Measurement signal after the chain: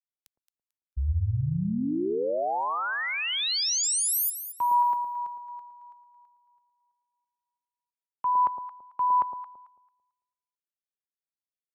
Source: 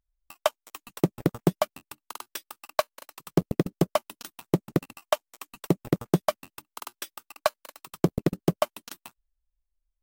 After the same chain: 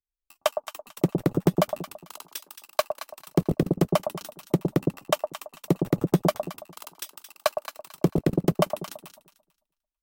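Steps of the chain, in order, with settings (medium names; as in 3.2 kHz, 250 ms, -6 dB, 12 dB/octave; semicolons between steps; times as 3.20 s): echo whose repeats swap between lows and highs 111 ms, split 860 Hz, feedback 57%, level -4 dB; three bands expanded up and down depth 40%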